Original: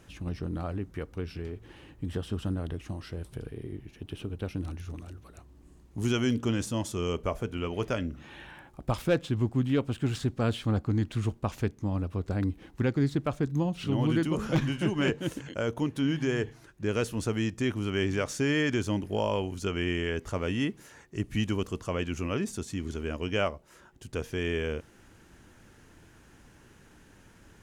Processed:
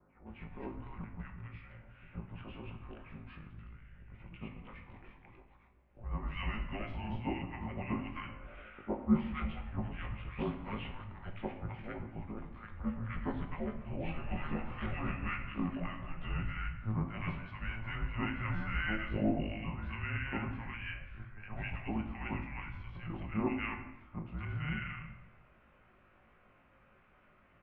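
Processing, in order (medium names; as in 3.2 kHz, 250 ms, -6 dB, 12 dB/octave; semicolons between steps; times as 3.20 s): short-time spectra conjugated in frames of 38 ms; three bands offset in time mids, highs, lows 260/350 ms, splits 320/1400 Hz; simulated room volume 490 m³, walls mixed, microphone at 0.84 m; mistuned SSB -310 Hz 330–2900 Hz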